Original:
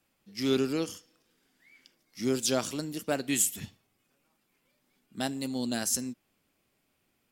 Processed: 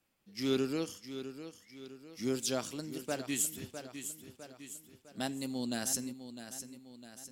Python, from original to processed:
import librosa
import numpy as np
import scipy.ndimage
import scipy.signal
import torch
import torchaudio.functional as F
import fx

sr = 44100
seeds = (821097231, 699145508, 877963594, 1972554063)

y = fx.echo_feedback(x, sr, ms=655, feedback_pct=45, wet_db=-11)
y = fx.rider(y, sr, range_db=4, speed_s=2.0)
y = F.gain(torch.from_numpy(y), -6.5).numpy()